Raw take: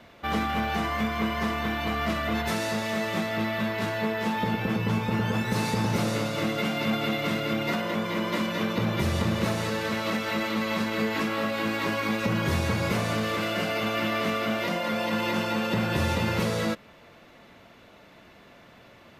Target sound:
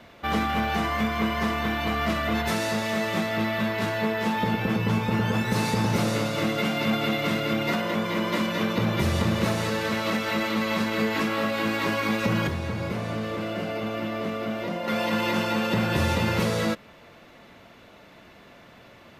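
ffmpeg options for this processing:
-filter_complex "[0:a]asettb=1/sr,asplit=3[s0][s1][s2];[s0]atrim=end=12.474[s3];[s1]atrim=start=12.47:end=14.88,asetpts=PTS-STARTPTS,afade=t=in:d=0.004:c=qsin,afade=t=out:st=2.406:d=0.004:c=qsin,acrossover=split=810|4500[s4][s5][s6];[s4]acompressor=threshold=0.0355:ratio=4[s7];[s5]acompressor=threshold=0.00891:ratio=4[s8];[s6]acompressor=threshold=0.00112:ratio=4[s9];[s7][s8][s9]amix=inputs=3:normalize=0[s10];[s2]atrim=start=14.876[s11];[s3][s10]acrossfade=d=0.004:c1=hsin:c2=qsin[s12];[s12][s11]acrossfade=d=0.004:c1=qsin:c2=hsin,volume=1.26"

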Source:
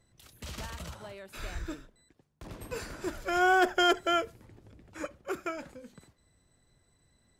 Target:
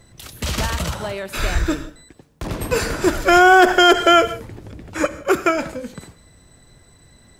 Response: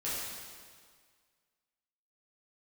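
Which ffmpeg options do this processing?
-filter_complex "[0:a]asplit=2[s0][s1];[1:a]atrim=start_sample=2205,atrim=end_sample=4410,adelay=83[s2];[s1][s2]afir=irnorm=-1:irlink=0,volume=0.119[s3];[s0][s3]amix=inputs=2:normalize=0,alimiter=level_in=9.44:limit=0.891:release=50:level=0:latency=1,volume=0.841"

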